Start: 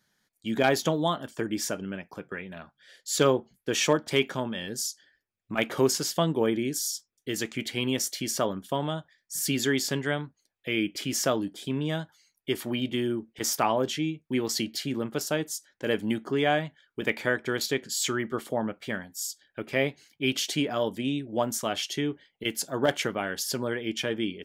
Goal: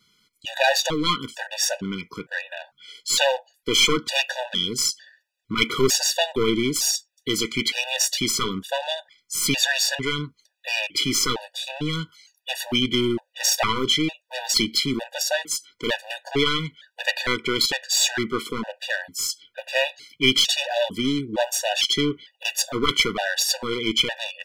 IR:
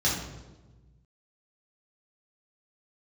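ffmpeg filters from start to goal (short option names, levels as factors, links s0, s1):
-af "aeval=exprs='clip(val(0),-1,0.0335)':c=same,equalizer=f=3400:t=o:w=2:g=10.5,afftfilt=real='re*gt(sin(2*PI*1.1*pts/sr)*(1-2*mod(floor(b*sr/1024/490),2)),0)':imag='im*gt(sin(2*PI*1.1*pts/sr)*(1-2*mod(floor(b*sr/1024/490),2)),0)':win_size=1024:overlap=0.75,volume=2.24"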